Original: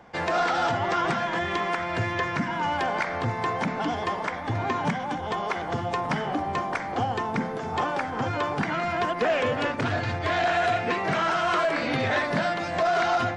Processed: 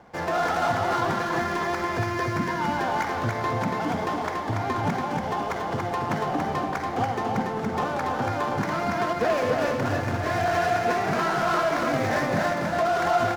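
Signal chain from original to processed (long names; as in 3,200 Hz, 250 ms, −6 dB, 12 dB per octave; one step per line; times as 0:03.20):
running median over 15 samples
single-tap delay 284 ms −3.5 dB
on a send at −12 dB: convolution reverb RT60 1.6 s, pre-delay 76 ms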